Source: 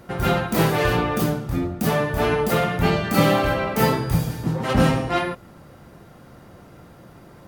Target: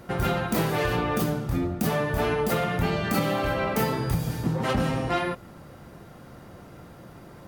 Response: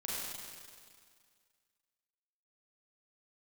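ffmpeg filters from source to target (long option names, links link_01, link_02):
-af "acompressor=threshold=-21dB:ratio=10"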